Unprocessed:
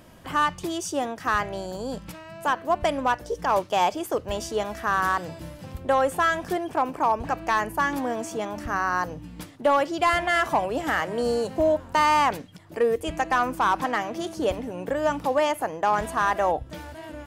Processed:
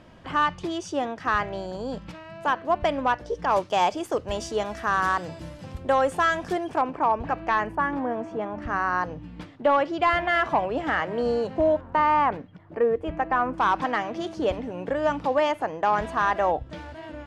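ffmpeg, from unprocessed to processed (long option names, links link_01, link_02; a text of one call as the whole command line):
ffmpeg -i in.wav -af "asetnsamples=nb_out_samples=441:pad=0,asendcmd='3.51 lowpass f 7500;6.81 lowpass f 3100;7.75 lowpass f 1700;8.62 lowpass f 3300;11.81 lowpass f 1700;13.58 lowpass f 4400',lowpass=4300" out.wav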